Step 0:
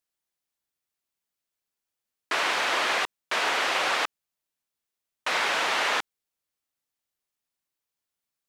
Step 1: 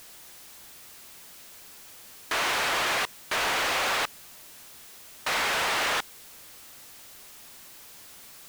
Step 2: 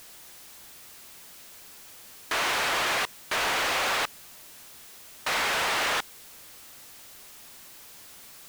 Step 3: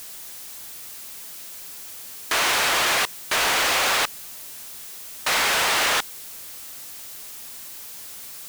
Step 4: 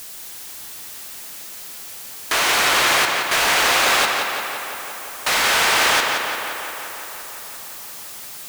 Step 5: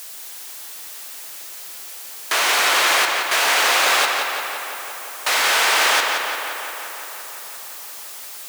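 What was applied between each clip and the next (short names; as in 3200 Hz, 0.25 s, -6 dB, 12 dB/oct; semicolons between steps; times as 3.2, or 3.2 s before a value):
power-law curve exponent 0.35; gain -8 dB
nothing audible
high shelf 4500 Hz +7 dB; gain +4 dB
tape echo 0.174 s, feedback 80%, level -3 dB, low-pass 5000 Hz; gain +2.5 dB
HPF 380 Hz 12 dB/oct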